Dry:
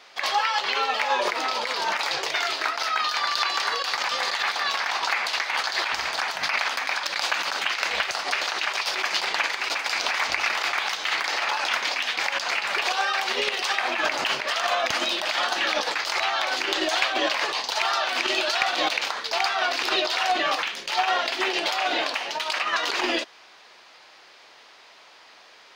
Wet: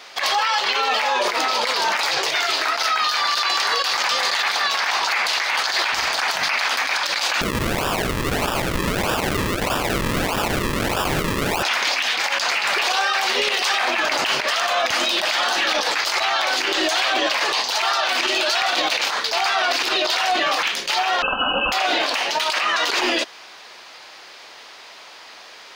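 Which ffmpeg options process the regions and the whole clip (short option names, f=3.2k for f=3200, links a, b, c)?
-filter_complex "[0:a]asettb=1/sr,asplit=3[a][b][c];[a]atrim=end=7.414[d];[b]atrim=start=7.41:end=11.63,asetpts=PTS-STARTPTS,afade=t=in:d=0.004:c=qsin,afade=t=out:st=4.216:d=0.004:c=qsin,acrusher=samples=41:mix=1:aa=0.000001:lfo=1:lforange=41:lforate=1.6,equalizer=f=2k:w=0.49:g=8.5[e];[c]atrim=start=11.626[f];[d][e]acrossfade=d=0.004:c1=hsin:c2=qsin[g];[g][f]acrossfade=d=0.004:c1=qsin:c2=hsin,asettb=1/sr,asplit=3[h][i][j];[h]atrim=end=21.224[k];[i]atrim=start=21.22:end=21.72,asetpts=PTS-STARTPTS,afade=t=in:d=0.004:c=qsin,afade=t=out:st=0.496:d=0.004:c=qsin,asuperstop=centerf=1100:order=20:qfactor=1.1,lowpass=f=2.8k:t=q:w=0.5098,lowpass=f=2.8k:t=q:w=0.6013,lowpass=f=2.8k:t=q:w=0.9,lowpass=f=2.8k:t=q:w=2.563,afreqshift=-3300,aecho=1:1:3.9:0.67,atrim=end_sample=22050[l];[j]atrim=start=21.716[m];[k][l]acrossfade=d=0.004:c1=hsin:c2=qsin[n];[n][m]acrossfade=d=0.004:c1=qsin:c2=hsin,alimiter=limit=-20dB:level=0:latency=1:release=25,highshelf=f=6.7k:g=6,volume=8dB"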